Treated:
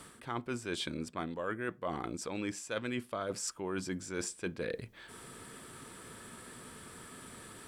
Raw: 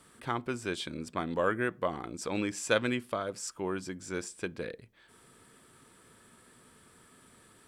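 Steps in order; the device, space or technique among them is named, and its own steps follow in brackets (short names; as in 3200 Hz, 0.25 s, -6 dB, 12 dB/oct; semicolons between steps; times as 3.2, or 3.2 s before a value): compression on the reversed sound (reverse; compressor 8:1, threshold -43 dBFS, peak gain reduction 21.5 dB; reverse); gain +9 dB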